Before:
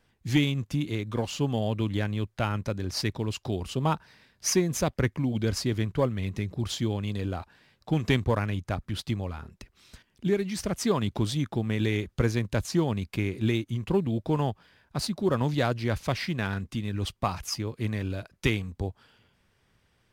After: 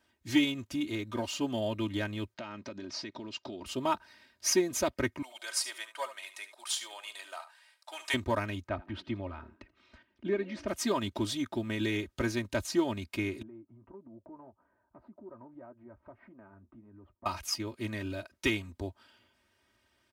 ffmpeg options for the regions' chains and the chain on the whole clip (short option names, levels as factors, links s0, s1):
-filter_complex "[0:a]asettb=1/sr,asplit=3[s0][s1][s2];[s0]atrim=end=2.344[s3];[s1]atrim=start=2.34:end=3.66,asetpts=PTS-STARTPTS,afade=t=in:d=0.004:c=qsin,afade=t=out:st=1.316:d=0.004:c=qsin,lowpass=f=5900:w=0.5412,lowpass=f=5900:w=1.3066,lowshelf=f=110:t=q:w=1.5:g=-11.5,acompressor=threshold=0.0251:ratio=12:attack=3.2:release=140:knee=1:detection=peak[s4];[s2]atrim=start=3.656[s5];[s3][s4]acrossfade=d=0.004:c1=hsin:c2=qsin[s6];[s6][s5]acrossfade=d=0.004:c1=qsin:c2=hsin,asettb=1/sr,asplit=3[s7][s8][s9];[s7]atrim=end=5.224[s10];[s8]atrim=start=5.22:end=8.14,asetpts=PTS-STARTPTS,afade=t=in:d=0.004:c=qsin,afade=t=out:st=2.916:d=0.004:c=qsin,highpass=f=740:w=0.5412,highpass=f=740:w=1.3066,equalizer=f=9100:t=o:w=0.53:g=12,aecho=1:1:72:0.224,atrim=end_sample=128772[s11];[s9]atrim=start=8.136[s12];[s10][s11]acrossfade=d=0.004:c1=hsin:c2=qsin[s13];[s13][s12]acrossfade=d=0.004:c1=qsin:c2=hsin,asettb=1/sr,asplit=3[s14][s15][s16];[s14]atrim=end=8.674[s17];[s15]atrim=start=8.67:end=10.68,asetpts=PTS-STARTPTS,afade=t=in:d=0.004:c=qsin,afade=t=out:st=2.006:d=0.004:c=qsin,lowpass=2300,asplit=4[s18][s19][s20][s21];[s19]adelay=83,afreqshift=77,volume=0.0794[s22];[s20]adelay=166,afreqshift=154,volume=0.0359[s23];[s21]adelay=249,afreqshift=231,volume=0.016[s24];[s18][s22][s23][s24]amix=inputs=4:normalize=0,atrim=end_sample=88641[s25];[s16]atrim=start=10.676[s26];[s17][s25]acrossfade=d=0.004:c1=hsin:c2=qsin[s27];[s27][s26]acrossfade=d=0.004:c1=qsin:c2=hsin,asettb=1/sr,asplit=3[s28][s29][s30];[s28]atrim=end=13.424[s31];[s29]atrim=start=13.42:end=17.26,asetpts=PTS-STARTPTS,afade=t=in:d=0.004:c=qsin,afade=t=out:st=3.836:d=0.004:c=qsin,lowpass=f=1200:w=0.5412,lowpass=f=1200:w=1.3066,acompressor=threshold=0.00562:ratio=2.5:attack=3.2:release=140:knee=1:detection=peak,flanger=delay=4:depth=2.8:regen=-64:speed=1.7:shape=sinusoidal[s32];[s30]atrim=start=17.256[s33];[s31][s32]acrossfade=d=0.004:c1=hsin:c2=qsin[s34];[s34][s33]acrossfade=d=0.004:c1=qsin:c2=hsin,highpass=72,equalizer=f=94:w=0.38:g=-5,aecho=1:1:3.2:0.83,volume=0.668"